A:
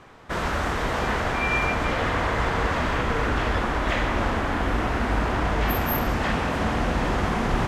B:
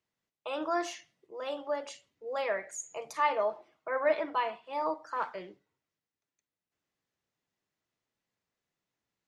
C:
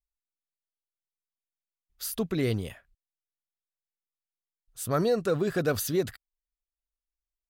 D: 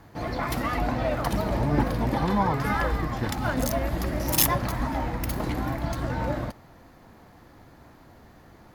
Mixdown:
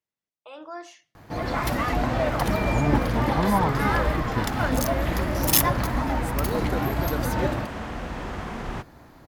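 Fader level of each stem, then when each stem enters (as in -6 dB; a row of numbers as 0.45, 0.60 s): -9.0, -7.0, -6.0, +2.0 dB; 1.15, 0.00, 1.45, 1.15 s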